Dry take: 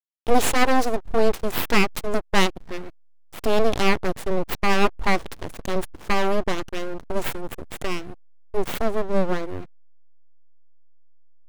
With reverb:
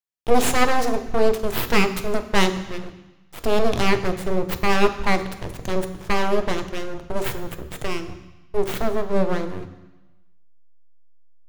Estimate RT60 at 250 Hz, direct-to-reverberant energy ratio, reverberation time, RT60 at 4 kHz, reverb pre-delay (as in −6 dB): 1.1 s, 8.0 dB, 1.0 s, 1.2 s, 3 ms